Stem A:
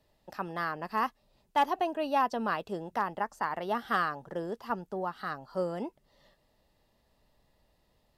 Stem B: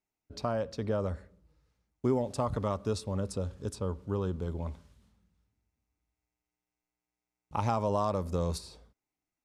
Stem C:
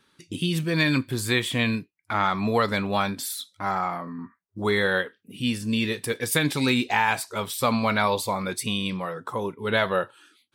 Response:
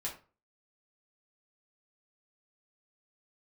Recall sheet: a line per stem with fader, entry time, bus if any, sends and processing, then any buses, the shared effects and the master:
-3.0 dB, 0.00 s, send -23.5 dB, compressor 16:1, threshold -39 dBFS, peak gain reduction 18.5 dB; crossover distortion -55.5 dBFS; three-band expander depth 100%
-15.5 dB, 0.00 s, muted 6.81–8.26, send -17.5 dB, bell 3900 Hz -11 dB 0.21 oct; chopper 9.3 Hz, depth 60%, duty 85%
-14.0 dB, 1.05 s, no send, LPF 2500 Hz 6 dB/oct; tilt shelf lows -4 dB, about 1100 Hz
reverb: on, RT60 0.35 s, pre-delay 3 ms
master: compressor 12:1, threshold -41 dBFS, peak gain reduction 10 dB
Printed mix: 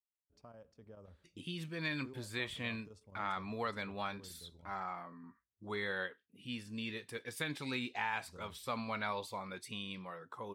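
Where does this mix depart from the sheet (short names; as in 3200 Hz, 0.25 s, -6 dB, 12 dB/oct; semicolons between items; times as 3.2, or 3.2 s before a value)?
stem A: muted; stem B -15.5 dB -> -24.5 dB; master: missing compressor 12:1, threshold -41 dBFS, peak gain reduction 10 dB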